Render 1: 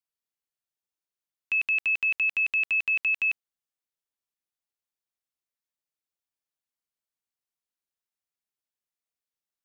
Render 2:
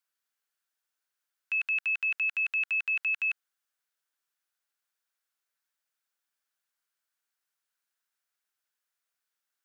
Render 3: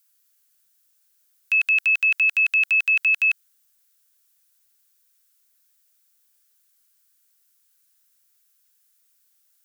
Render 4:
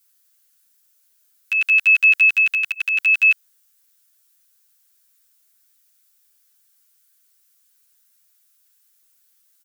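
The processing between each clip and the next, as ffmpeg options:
-af "equalizer=f=1500:t=o:w=0.48:g=9,alimiter=level_in=1.88:limit=0.0631:level=0:latency=1,volume=0.531,highpass=f=700:p=1,volume=1.88"
-af "crystalizer=i=7.5:c=0"
-filter_complex "[0:a]asplit=2[s0][s1];[s1]adelay=9.8,afreqshift=-0.72[s2];[s0][s2]amix=inputs=2:normalize=1,volume=2.11"

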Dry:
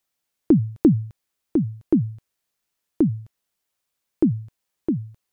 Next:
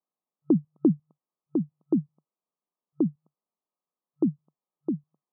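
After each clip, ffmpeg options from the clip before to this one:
-af "afftfilt=real='re*between(b*sr/4096,140,1300)':imag='im*between(b*sr/4096,140,1300)':win_size=4096:overlap=0.75,volume=0.531"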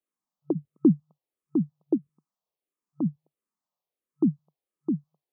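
-filter_complex "[0:a]asplit=2[s0][s1];[s1]afreqshift=-1.5[s2];[s0][s2]amix=inputs=2:normalize=1,volume=1.41"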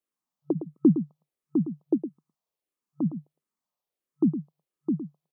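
-af "aecho=1:1:111:0.299"

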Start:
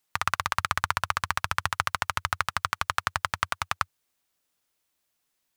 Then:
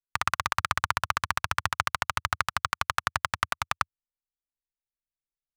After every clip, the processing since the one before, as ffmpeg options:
-af "anlmdn=3.98"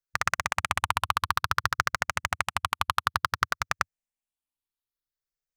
-af "afftfilt=real='re*pow(10,7/40*sin(2*PI*(0.57*log(max(b,1)*sr/1024/100)/log(2)-(0.57)*(pts-256)/sr)))':imag='im*pow(10,7/40*sin(2*PI*(0.57*log(max(b,1)*sr/1024/100)/log(2)-(0.57)*(pts-256)/sr)))':win_size=1024:overlap=0.75"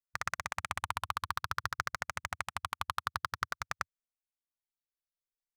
-af "equalizer=f=2800:t=o:w=0.28:g=-3.5,volume=0.355"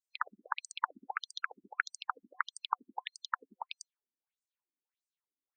-af "superequalizer=6b=1.41:8b=0.562:9b=1.58:14b=0.398:15b=0.631,afftfilt=real='re*between(b*sr/1024,250*pow(6600/250,0.5+0.5*sin(2*PI*1.6*pts/sr))/1.41,250*pow(6600/250,0.5+0.5*sin(2*PI*1.6*pts/sr))*1.41)':imag='im*between(b*sr/1024,250*pow(6600/250,0.5+0.5*sin(2*PI*1.6*pts/sr))/1.41,250*pow(6600/250,0.5+0.5*sin(2*PI*1.6*pts/sr))*1.41)':win_size=1024:overlap=0.75,volume=2.24"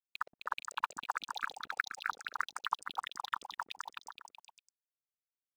-filter_complex "[0:a]acrusher=bits=7:mix=0:aa=0.5,asplit=2[s0][s1];[s1]aecho=0:1:260|468|634.4|767.5|874:0.631|0.398|0.251|0.158|0.1[s2];[s0][s2]amix=inputs=2:normalize=0,volume=0.794"

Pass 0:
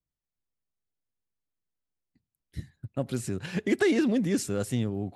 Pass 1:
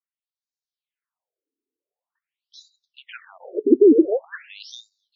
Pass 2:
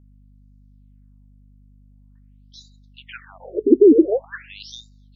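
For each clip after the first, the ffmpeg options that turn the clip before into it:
-af "dynaudnorm=f=390:g=5:m=6.31,afftfilt=real='re*between(b*sr/1024,330*pow(5200/330,0.5+0.5*sin(2*PI*0.46*pts/sr))/1.41,330*pow(5200/330,0.5+0.5*sin(2*PI*0.46*pts/sr))*1.41)':imag='im*between(b*sr/1024,330*pow(5200/330,0.5+0.5*sin(2*PI*0.46*pts/sr))/1.41,330*pow(5200/330,0.5+0.5*sin(2*PI*0.46*pts/sr))*1.41)':win_size=1024:overlap=0.75"
-af "aeval=exprs='val(0)+0.00282*(sin(2*PI*50*n/s)+sin(2*PI*2*50*n/s)/2+sin(2*PI*3*50*n/s)/3+sin(2*PI*4*50*n/s)/4+sin(2*PI*5*50*n/s)/5)':c=same,volume=1.19"

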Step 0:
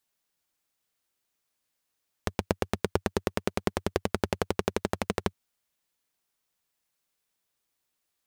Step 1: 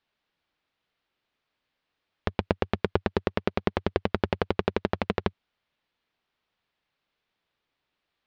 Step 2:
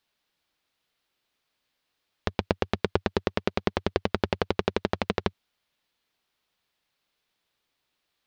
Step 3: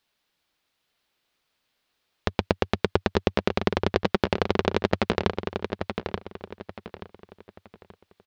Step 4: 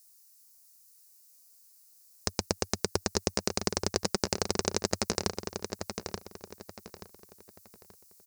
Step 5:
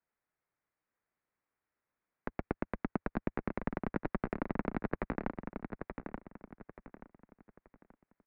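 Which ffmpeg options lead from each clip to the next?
-filter_complex "[0:a]lowpass=f=3900:w=0.5412,lowpass=f=3900:w=1.3066,asplit=2[s0][s1];[s1]alimiter=limit=0.133:level=0:latency=1:release=61,volume=0.891[s2];[s0][s2]amix=inputs=2:normalize=0"
-af "bass=f=250:g=-1,treble=f=4000:g=10"
-filter_complex "[0:a]asplit=2[s0][s1];[s1]adelay=880,lowpass=f=4600:p=1,volume=0.501,asplit=2[s2][s3];[s3]adelay=880,lowpass=f=4600:p=1,volume=0.34,asplit=2[s4][s5];[s5]adelay=880,lowpass=f=4600:p=1,volume=0.34,asplit=2[s6][s7];[s7]adelay=880,lowpass=f=4600:p=1,volume=0.34[s8];[s0][s2][s4][s6][s8]amix=inputs=5:normalize=0,volume=1.33"
-af "aexciter=amount=15.5:drive=9.3:freq=5300,volume=0.398"
-af "highpass=130,highpass=f=190:t=q:w=0.5412,highpass=f=190:t=q:w=1.307,lowpass=f=2300:t=q:w=0.5176,lowpass=f=2300:t=q:w=0.7071,lowpass=f=2300:t=q:w=1.932,afreqshift=-180,volume=0.75"

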